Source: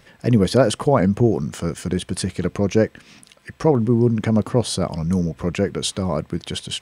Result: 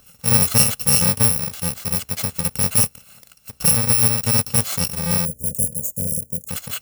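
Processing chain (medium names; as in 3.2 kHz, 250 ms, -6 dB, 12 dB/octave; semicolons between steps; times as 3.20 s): bit-reversed sample order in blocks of 128 samples; short-mantissa float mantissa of 2-bit; 5.25–6.49 s: Chebyshev band-stop 590–6800 Hz, order 4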